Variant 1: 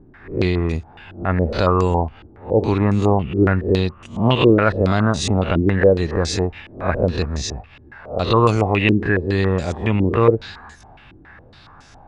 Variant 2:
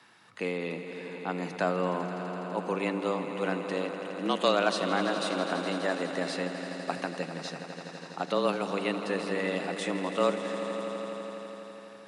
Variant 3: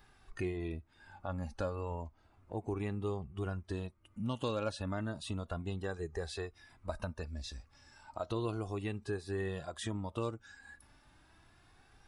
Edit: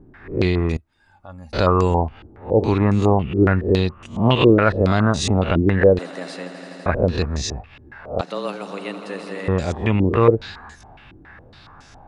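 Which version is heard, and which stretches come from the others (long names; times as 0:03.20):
1
0:00.77–0:01.53: punch in from 3
0:05.99–0:06.86: punch in from 2
0:08.21–0:09.48: punch in from 2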